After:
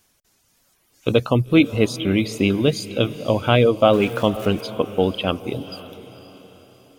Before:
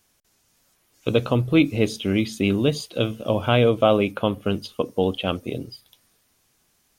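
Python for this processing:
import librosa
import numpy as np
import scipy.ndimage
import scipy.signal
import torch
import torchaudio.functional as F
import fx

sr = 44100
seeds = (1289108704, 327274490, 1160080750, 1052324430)

y = fx.zero_step(x, sr, step_db=-33.5, at=(3.93, 4.61))
y = fx.dereverb_blind(y, sr, rt60_s=0.56)
y = fx.echo_diffused(y, sr, ms=508, feedback_pct=45, wet_db=-15.0)
y = y * librosa.db_to_amplitude(3.0)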